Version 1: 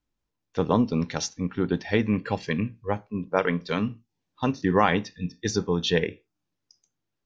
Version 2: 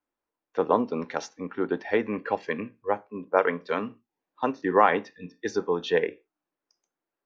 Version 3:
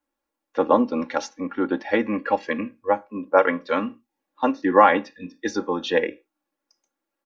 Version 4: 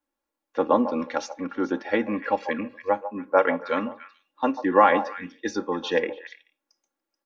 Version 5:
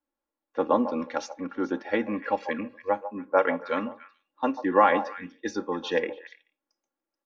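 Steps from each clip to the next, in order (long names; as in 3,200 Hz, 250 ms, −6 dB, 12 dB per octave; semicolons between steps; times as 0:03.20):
three-way crossover with the lows and the highs turned down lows −23 dB, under 300 Hz, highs −15 dB, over 2,100 Hz; level +3 dB
comb filter 3.6 ms, depth 74%; level +3 dB
echo through a band-pass that steps 144 ms, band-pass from 730 Hz, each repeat 1.4 octaves, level −9 dB; level −2.5 dB
one half of a high-frequency compander decoder only; level −2.5 dB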